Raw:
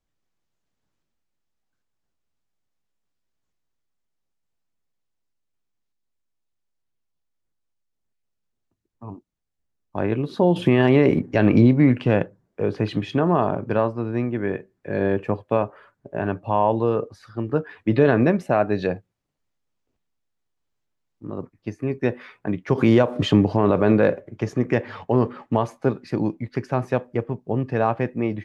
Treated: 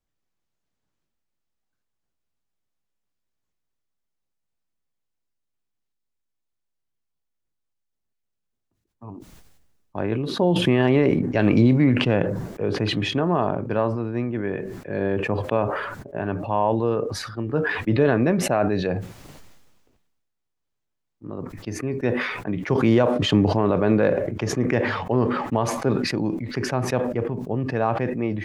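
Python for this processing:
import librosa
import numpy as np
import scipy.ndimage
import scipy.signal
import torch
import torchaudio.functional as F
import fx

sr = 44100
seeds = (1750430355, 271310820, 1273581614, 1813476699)

y = fx.high_shelf(x, sr, hz=3800.0, db=8.0, at=(11.39, 11.84))
y = fx.sustainer(y, sr, db_per_s=39.0)
y = F.gain(torch.from_numpy(y), -2.5).numpy()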